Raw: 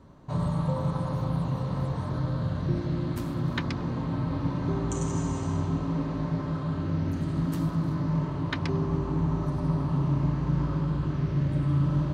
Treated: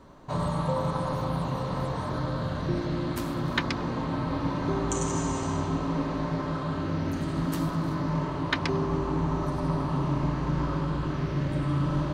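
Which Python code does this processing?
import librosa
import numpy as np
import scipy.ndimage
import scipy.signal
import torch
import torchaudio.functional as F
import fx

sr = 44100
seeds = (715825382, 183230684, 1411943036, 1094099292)

y = fx.peak_eq(x, sr, hz=110.0, db=-10.0, octaves=2.4)
y = y * 10.0 ** (6.0 / 20.0)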